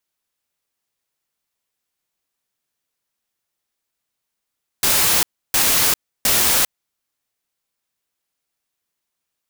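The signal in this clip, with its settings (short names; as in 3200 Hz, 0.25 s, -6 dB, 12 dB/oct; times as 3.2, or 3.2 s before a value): noise bursts white, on 0.40 s, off 0.31 s, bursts 3, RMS -16 dBFS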